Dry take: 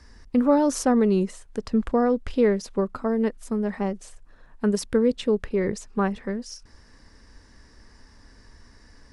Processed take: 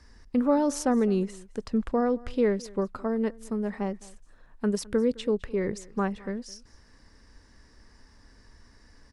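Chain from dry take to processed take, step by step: echo 0.211 s -22.5 dB; gain -4 dB

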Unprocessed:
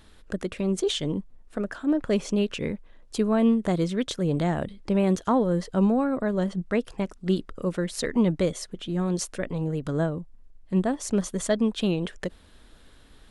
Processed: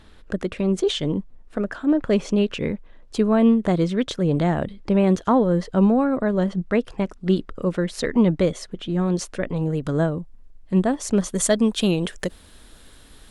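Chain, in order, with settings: high shelf 6700 Hz -11 dB, from 9.56 s -2.5 dB, from 11.35 s +11.5 dB; gain +4.5 dB

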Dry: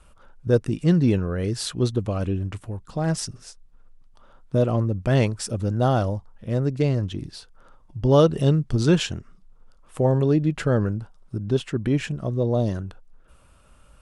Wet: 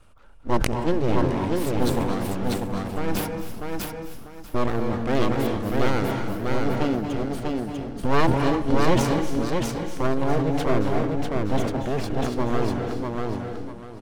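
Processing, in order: high shelf 5500 Hz -6 dB; full-wave rectifier; feedback echo 0.645 s, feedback 25%, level -3 dB; on a send at -5 dB: reverb RT60 0.60 s, pre-delay 0.223 s; on the sum: sustainer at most 64 dB/s; gain -1 dB

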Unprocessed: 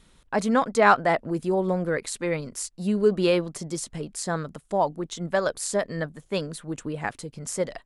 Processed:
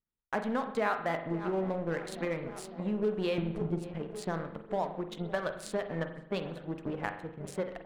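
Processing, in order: Wiener smoothing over 9 samples; resonant high shelf 4700 Hz -7.5 dB, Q 1.5; darkening echo 0.552 s, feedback 79%, low-pass 1400 Hz, level -17 dB; gate -41 dBFS, range -17 dB; in parallel at -4 dB: hard clip -18.5 dBFS, distortion -10 dB; 3.38–3.8 on the sum: tilt -3.5 dB/oct; compressor 3:1, threshold -25 dBFS, peak gain reduction 11.5 dB; power-law curve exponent 1.4; on a send at -7 dB: reverb RT60 0.75 s, pre-delay 42 ms; on the sum: gain -3.5 dB

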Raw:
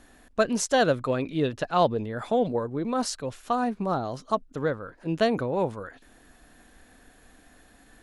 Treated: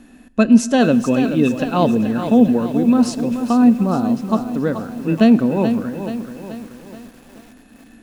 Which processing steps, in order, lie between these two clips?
small resonant body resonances 230/2600 Hz, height 17 dB, ringing for 45 ms; reverb RT60 2.2 s, pre-delay 5 ms, DRR 17 dB; lo-fi delay 0.43 s, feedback 55%, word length 7-bit, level -9 dB; gain +2 dB

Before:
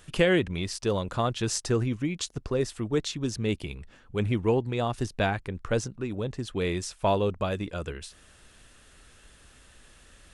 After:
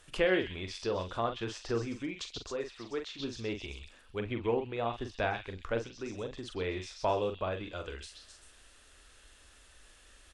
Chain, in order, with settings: bell 150 Hz -13.5 dB 1.1 oct; doubler 43 ms -7 dB; delay with a stepping band-pass 0.13 s, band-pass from 3800 Hz, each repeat 0.7 oct, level -3 dB; treble ducked by the level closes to 2900 Hz, closed at -27.5 dBFS; 2.44–3.19 low shelf 330 Hz -9.5 dB; gain -4.5 dB

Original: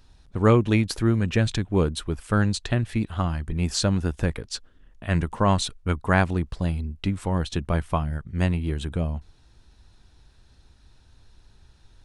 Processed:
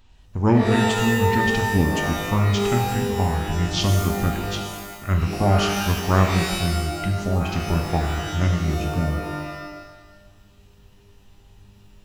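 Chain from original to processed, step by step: formant shift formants -5 st; shimmer reverb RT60 1.2 s, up +12 st, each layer -2 dB, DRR 3.5 dB

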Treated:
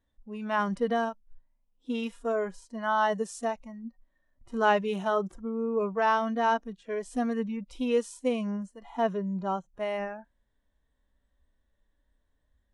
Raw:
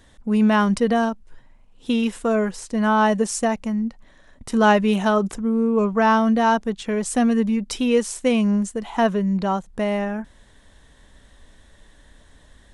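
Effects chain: spectral noise reduction 14 dB; harmonic-percussive split percussive -14 dB; mismatched tape noise reduction decoder only; gain -6.5 dB

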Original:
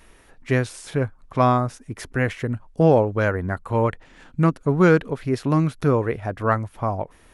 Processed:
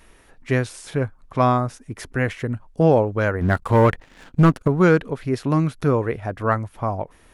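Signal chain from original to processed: 3.41–4.68 sample leveller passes 2

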